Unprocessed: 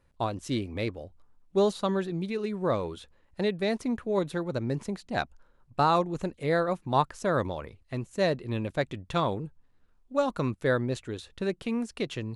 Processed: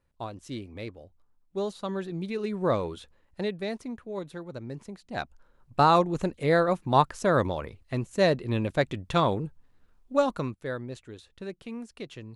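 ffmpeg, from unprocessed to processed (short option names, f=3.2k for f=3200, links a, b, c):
-af "volume=13.5dB,afade=t=in:st=1.75:d=0.93:silence=0.354813,afade=t=out:st=2.68:d=1.28:silence=0.316228,afade=t=in:st=4.98:d=0.84:silence=0.266073,afade=t=out:st=10.16:d=0.41:silence=0.266073"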